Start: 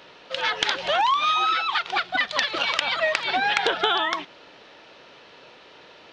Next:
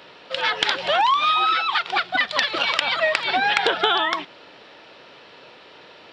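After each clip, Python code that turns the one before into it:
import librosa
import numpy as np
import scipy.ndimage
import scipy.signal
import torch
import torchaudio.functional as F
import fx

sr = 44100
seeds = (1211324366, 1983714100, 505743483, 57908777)

y = scipy.signal.sosfilt(scipy.signal.butter(2, 58.0, 'highpass', fs=sr, output='sos'), x)
y = fx.notch(y, sr, hz=6300.0, q=6.5)
y = y * librosa.db_to_amplitude(2.5)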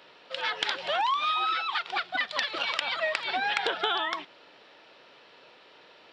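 y = fx.low_shelf(x, sr, hz=190.0, db=-7.5)
y = y * librosa.db_to_amplitude(-8.0)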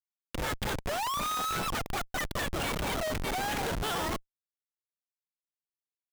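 y = fx.schmitt(x, sr, flips_db=-29.5)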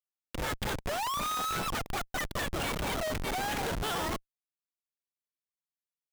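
y = fx.upward_expand(x, sr, threshold_db=-46.0, expansion=1.5)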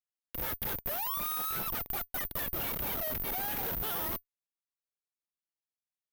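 y = (np.kron(scipy.signal.resample_poly(x, 1, 3), np.eye(3)[0]) * 3)[:len(x)]
y = y * librosa.db_to_amplitude(-6.5)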